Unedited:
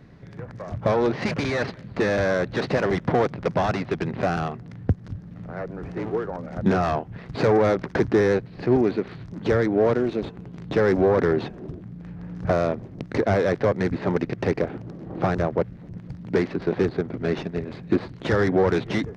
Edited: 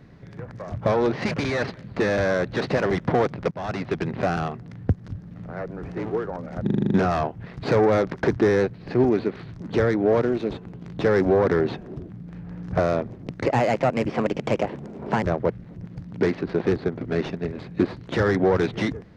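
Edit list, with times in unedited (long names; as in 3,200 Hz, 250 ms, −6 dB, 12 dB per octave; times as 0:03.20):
0:03.51–0:03.86: fade in, from −23 dB
0:06.63: stutter 0.04 s, 8 plays
0:13.18–0:15.35: play speed 123%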